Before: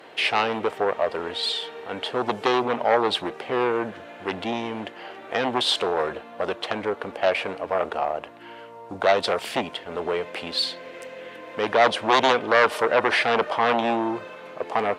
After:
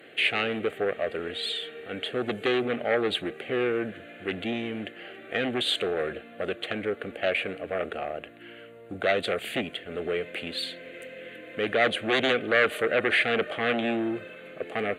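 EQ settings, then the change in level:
phaser with its sweep stopped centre 2,300 Hz, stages 4
0.0 dB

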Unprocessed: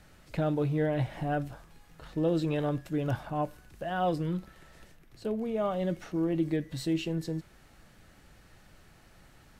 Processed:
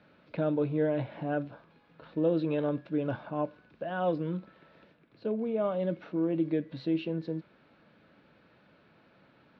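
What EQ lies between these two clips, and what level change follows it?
high-frequency loss of the air 170 metres
loudspeaker in its box 240–3,700 Hz, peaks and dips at 370 Hz −5 dB, 770 Hz −9 dB, 1,200 Hz −5 dB, 1,900 Hz −10 dB, 3,000 Hz −6 dB
+4.5 dB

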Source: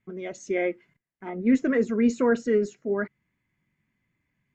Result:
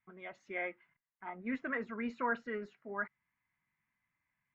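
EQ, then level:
high-frequency loss of the air 390 metres
low shelf with overshoot 640 Hz −13 dB, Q 1.5
−2.5 dB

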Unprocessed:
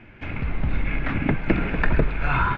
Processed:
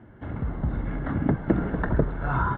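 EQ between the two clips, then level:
moving average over 18 samples
high-pass filter 51 Hz
0.0 dB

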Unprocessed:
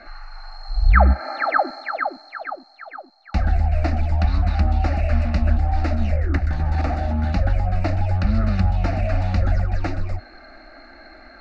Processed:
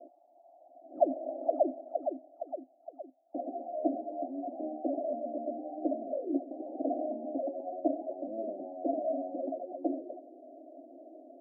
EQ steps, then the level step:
Chebyshev band-pass filter 260–700 Hz, order 5
high-frequency loss of the air 460 metres
0.0 dB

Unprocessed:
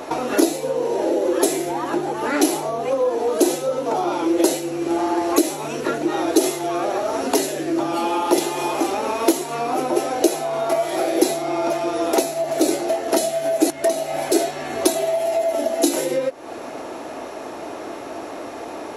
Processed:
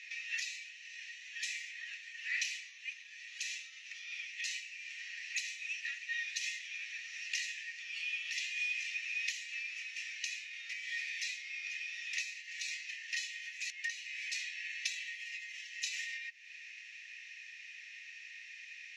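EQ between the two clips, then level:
Chebyshev high-pass with heavy ripple 1,800 Hz, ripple 9 dB
high-frequency loss of the air 210 metres
high-shelf EQ 8,000 Hz −9 dB
+5.0 dB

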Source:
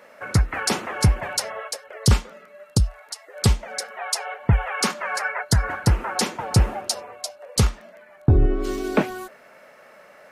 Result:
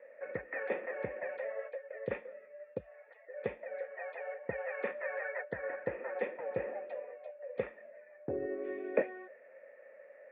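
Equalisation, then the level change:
formant resonators in series e
high-pass filter 270 Hz 12 dB per octave
low-pass filter 3,300 Hz
+2.0 dB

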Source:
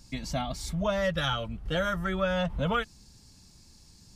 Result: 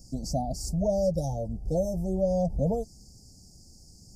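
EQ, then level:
Chebyshev band-stop filter 780–4,800 Hz, order 5
+3.5 dB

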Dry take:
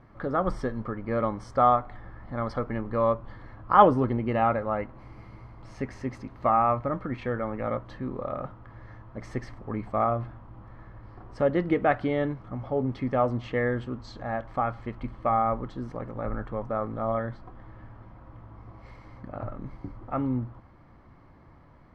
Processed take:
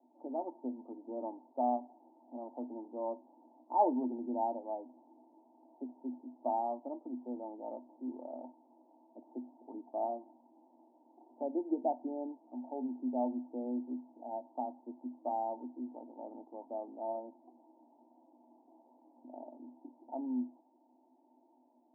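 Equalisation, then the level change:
Chebyshev high-pass with heavy ripple 240 Hz, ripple 9 dB
Chebyshev low-pass with heavy ripple 930 Hz, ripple 9 dB
0.0 dB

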